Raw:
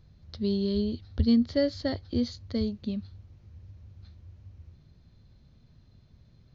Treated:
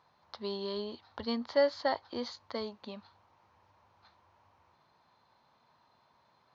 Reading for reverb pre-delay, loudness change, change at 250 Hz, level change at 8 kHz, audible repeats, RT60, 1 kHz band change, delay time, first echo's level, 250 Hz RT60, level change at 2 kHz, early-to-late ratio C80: none, -6.5 dB, -14.0 dB, n/a, none, none, +11.5 dB, none, none, none, +3.0 dB, none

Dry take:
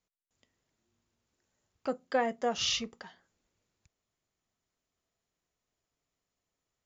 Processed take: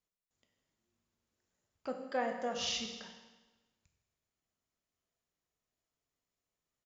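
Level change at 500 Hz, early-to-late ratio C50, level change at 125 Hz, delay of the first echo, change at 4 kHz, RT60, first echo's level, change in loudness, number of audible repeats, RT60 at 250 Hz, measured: -5.0 dB, 6.0 dB, -4.5 dB, 0.161 s, -5.0 dB, 1.2 s, -17.5 dB, -5.5 dB, 1, 1.2 s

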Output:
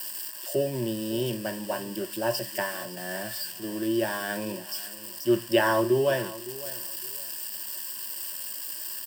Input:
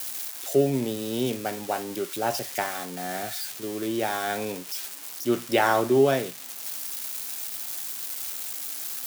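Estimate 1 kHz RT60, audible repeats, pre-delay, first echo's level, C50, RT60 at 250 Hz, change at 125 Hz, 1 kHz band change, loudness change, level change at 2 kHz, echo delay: none, 2, none, -17.0 dB, none, none, -1.0 dB, -5.0 dB, -2.0 dB, -0.5 dB, 0.56 s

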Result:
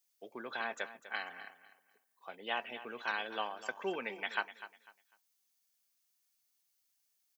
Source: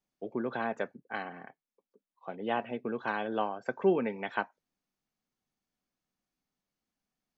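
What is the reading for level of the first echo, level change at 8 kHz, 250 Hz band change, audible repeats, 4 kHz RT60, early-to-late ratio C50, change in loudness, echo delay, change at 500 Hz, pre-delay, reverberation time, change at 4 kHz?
-14.0 dB, n/a, -14.0 dB, 2, none, none, -5.5 dB, 0.249 s, -10.5 dB, none, none, +5.5 dB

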